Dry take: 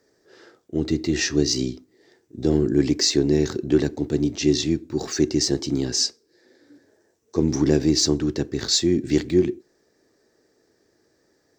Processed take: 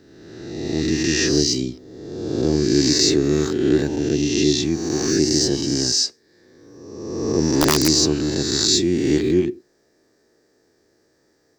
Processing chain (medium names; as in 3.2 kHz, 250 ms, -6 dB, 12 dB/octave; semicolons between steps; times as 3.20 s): reverse spectral sustain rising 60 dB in 1.47 s; 7.42–7.88 s: integer overflow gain 6.5 dB; trim -1 dB